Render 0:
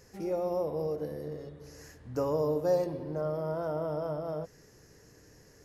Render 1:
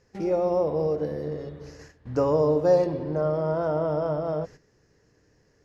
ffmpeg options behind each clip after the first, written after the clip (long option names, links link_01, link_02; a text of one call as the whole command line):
ffmpeg -i in.wav -af "lowpass=4900,agate=range=-13dB:threshold=-50dB:ratio=16:detection=peak,volume=7.5dB" out.wav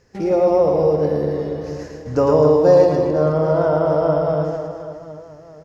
ffmpeg -i in.wav -af "aecho=1:1:110|264|479.6|781.4|1204:0.631|0.398|0.251|0.158|0.1,volume=6.5dB" out.wav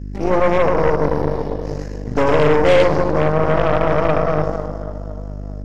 ffmpeg -i in.wav -af "aeval=exprs='val(0)+0.0501*(sin(2*PI*50*n/s)+sin(2*PI*2*50*n/s)/2+sin(2*PI*3*50*n/s)/3+sin(2*PI*4*50*n/s)/4+sin(2*PI*5*50*n/s)/5)':channel_layout=same,aeval=exprs='0.794*(cos(1*acos(clip(val(0)/0.794,-1,1)))-cos(1*PI/2))+0.141*(cos(8*acos(clip(val(0)/0.794,-1,1)))-cos(8*PI/2))':channel_layout=same,volume=-1.5dB" out.wav